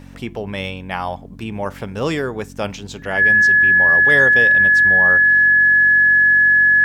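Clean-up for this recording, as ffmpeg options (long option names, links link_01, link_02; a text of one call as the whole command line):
ffmpeg -i in.wav -af "bandreject=frequency=46:width_type=h:width=4,bandreject=frequency=92:width_type=h:width=4,bandreject=frequency=138:width_type=h:width=4,bandreject=frequency=184:width_type=h:width=4,bandreject=frequency=230:width_type=h:width=4,bandreject=frequency=276:width_type=h:width=4,bandreject=frequency=1700:width=30" out.wav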